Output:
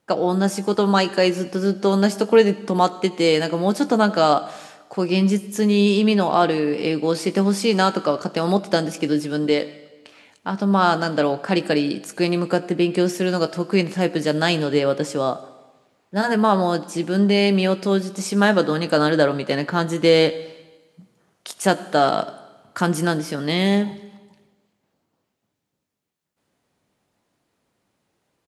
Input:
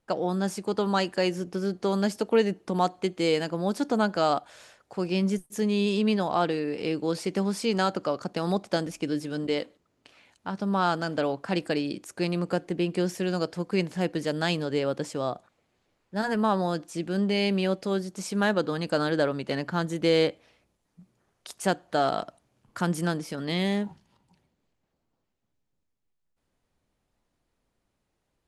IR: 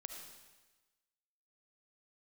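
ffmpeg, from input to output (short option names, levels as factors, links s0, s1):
-filter_complex "[0:a]highpass=120,asplit=2[s0][s1];[s1]adelay=20,volume=0.237[s2];[s0][s2]amix=inputs=2:normalize=0,asplit=2[s3][s4];[1:a]atrim=start_sample=2205[s5];[s4][s5]afir=irnorm=-1:irlink=0,volume=0.501[s6];[s3][s6]amix=inputs=2:normalize=0,volume=1.88"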